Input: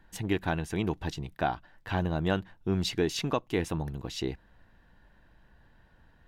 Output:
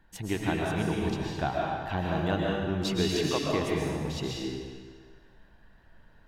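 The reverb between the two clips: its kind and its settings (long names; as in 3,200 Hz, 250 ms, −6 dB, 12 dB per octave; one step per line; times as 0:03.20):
comb and all-pass reverb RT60 1.6 s, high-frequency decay 0.95×, pre-delay 90 ms, DRR −3 dB
level −2.5 dB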